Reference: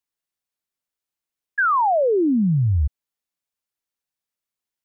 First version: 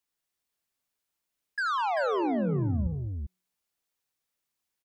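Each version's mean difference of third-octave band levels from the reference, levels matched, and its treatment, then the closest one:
14.5 dB: hum removal 183.4 Hz, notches 3
brickwall limiter −23 dBFS, peak gain reduction 10.5 dB
soft clipping −28.5 dBFS, distortion −16 dB
multi-tap delay 80/202/389 ms −9.5/−12/−5 dB
level +2 dB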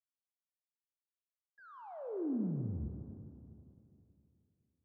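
10.0 dB: noise gate −14 dBFS, range −46 dB
leveller curve on the samples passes 5
low-pass filter sweep 800 Hz → 120 Hz, 0:01.38–0:03.04
four-comb reverb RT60 2.9 s, combs from 28 ms, DRR 4.5 dB
level +7.5 dB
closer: second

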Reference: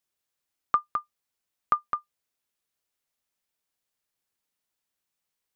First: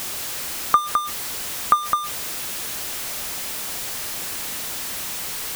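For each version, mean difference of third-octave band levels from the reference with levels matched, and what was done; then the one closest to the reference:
10.0 dB: converter with a step at zero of −29 dBFS
level +6.5 dB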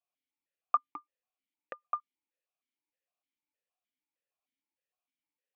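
4.0 dB: formant filter that steps through the vowels 6.5 Hz
level +5 dB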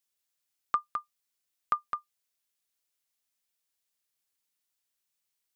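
1.5 dB: high-shelf EQ 2,000 Hz +9.5 dB
level −7 dB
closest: third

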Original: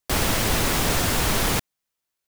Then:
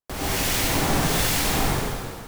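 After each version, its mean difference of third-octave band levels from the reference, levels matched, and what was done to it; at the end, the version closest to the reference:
3.0 dB: brickwall limiter −15 dBFS, peak gain reduction 5.5 dB
two-band tremolo in antiphase 1.3 Hz, crossover 1,600 Hz
dense smooth reverb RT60 2.1 s, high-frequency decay 0.9×, pre-delay 80 ms, DRR −9 dB
level −3.5 dB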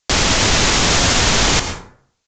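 8.0 dB: high-shelf EQ 2,300 Hz +8 dB
brickwall limiter −10.5 dBFS, peak gain reduction 5 dB
dense smooth reverb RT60 0.58 s, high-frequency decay 0.55×, pre-delay 95 ms, DRR 7.5 dB
downsampling to 16,000 Hz
level +7.5 dB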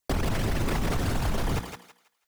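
5.5 dB: spectral envelope exaggerated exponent 2
mains-hum notches 60/120/180/240/300/360/420/480 Hz
downward compressor 4 to 1, threshold −25 dBFS, peak gain reduction 6.5 dB
feedback echo with a high-pass in the loop 163 ms, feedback 29%, high-pass 670 Hz, level −4.5 dB
level +1.5 dB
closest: first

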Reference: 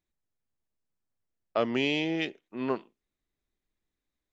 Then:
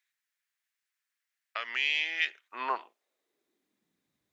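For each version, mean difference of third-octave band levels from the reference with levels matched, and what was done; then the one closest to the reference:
10.5 dB: in parallel at 0 dB: brickwall limiter −22 dBFS, peak gain reduction 9 dB
on the sum: downward compressor 2.5 to 1, threshold −26 dBFS, peak gain reduction 5.5 dB
high-pass filter sweep 1,800 Hz → 130 Hz, 0:02.21–0:04.19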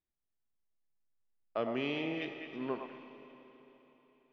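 5.0 dB: high-frequency loss of the air 190 metres
echo through a band-pass that steps 105 ms, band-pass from 820 Hz, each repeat 1.4 octaves, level −3 dB
four-comb reverb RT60 3.8 s, combs from 28 ms, DRR 8 dB
level −7 dB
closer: second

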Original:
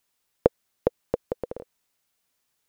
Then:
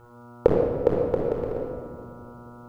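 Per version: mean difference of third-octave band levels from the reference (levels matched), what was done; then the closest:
5.5 dB: hum with harmonics 120 Hz, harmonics 12, −52 dBFS −3 dB per octave
rectangular room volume 2,900 cubic metres, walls mixed, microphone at 4.3 metres
level −2 dB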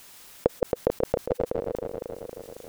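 7.5 dB: feedback delay that plays each chunk backwards 136 ms, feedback 64%, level −5 dB
envelope flattener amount 50%
level −3.5 dB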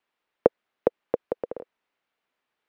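2.5 dB: three-way crossover with the lows and the highs turned down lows −13 dB, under 220 Hz, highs −24 dB, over 3,200 Hz
level +2 dB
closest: third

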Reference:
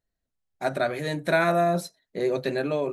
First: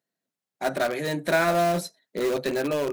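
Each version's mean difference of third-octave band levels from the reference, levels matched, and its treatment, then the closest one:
5.0 dB: high-pass filter 160 Hz 24 dB per octave
in parallel at −9.5 dB: wrap-around overflow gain 23 dB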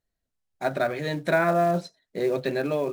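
2.0 dB: treble cut that deepens with the level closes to 2,000 Hz, closed at −18.5 dBFS
in parallel at −5 dB: floating-point word with a short mantissa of 2 bits
on the sum: level −3.5 dB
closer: second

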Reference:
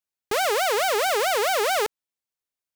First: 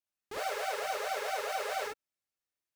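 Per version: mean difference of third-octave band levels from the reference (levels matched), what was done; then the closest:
4.5 dB: high-shelf EQ 9,400 Hz −5 dB
brickwall limiter −28.5 dBFS, peak gain reduction 11 dB
reverb whose tail is shaped and stops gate 80 ms rising, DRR −5 dB
level −7.5 dB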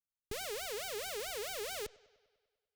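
6.0 dB: guitar amp tone stack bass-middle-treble 10-0-1
bucket-brigade delay 99 ms, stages 4,096, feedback 63%, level −22.5 dB
level +7.5 dB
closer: first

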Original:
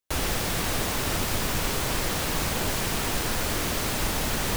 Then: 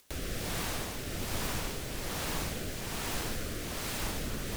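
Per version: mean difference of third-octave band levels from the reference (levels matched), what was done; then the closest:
2.0 dB: upward compression, threshold −28 dBFS
rotating-speaker cabinet horn 1.2 Hz
level −6.5 dB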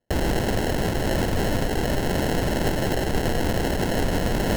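6.0 dB: in parallel at +1 dB: brickwall limiter −22.5 dBFS, peak gain reduction 9 dB
on the sum: decimation without filtering 37×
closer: first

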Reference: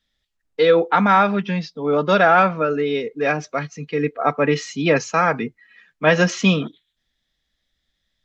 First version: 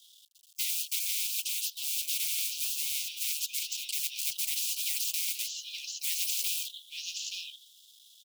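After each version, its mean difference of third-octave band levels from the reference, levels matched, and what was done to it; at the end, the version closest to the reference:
29.0 dB: mu-law and A-law mismatch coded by A
Butterworth high-pass 2,900 Hz 96 dB per octave
slap from a distant wall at 150 metres, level −12 dB
every bin compressed towards the loudest bin 10 to 1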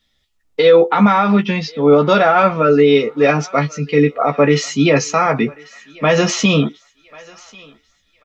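3.0 dB: notch filter 1,600 Hz, Q 8
brickwall limiter −12.5 dBFS, peak gain reduction 8.5 dB
double-tracking delay 14 ms −5.5 dB
on a send: feedback echo with a high-pass in the loop 1,091 ms, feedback 39%, high-pass 720 Hz, level −21.5 dB
on the sum: level +7.5 dB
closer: second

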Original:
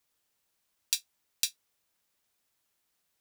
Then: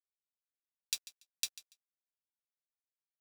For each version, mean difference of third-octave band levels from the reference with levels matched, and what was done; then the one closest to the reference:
4.5 dB: high-pass filter 760 Hz
high-shelf EQ 10,000 Hz −6 dB
dead-zone distortion −42.5 dBFS
on a send: repeating echo 143 ms, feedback 18%, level −17 dB
on the sum: level −4 dB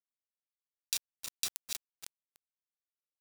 9.0 dB: feedback delay that plays each chunk backwards 158 ms, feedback 44%, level −8 dB
downward compressor 1.5 to 1, threshold −45 dBFS, peak gain reduction 8 dB
bit reduction 7 bits
level that may fall only so fast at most 98 dB per second
level +1.5 dB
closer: first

